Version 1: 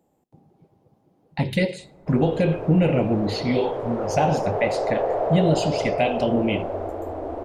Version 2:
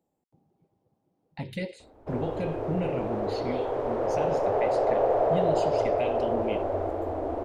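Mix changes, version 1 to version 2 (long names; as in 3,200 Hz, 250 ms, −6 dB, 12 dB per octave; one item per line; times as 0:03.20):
speech −10.0 dB
reverb: off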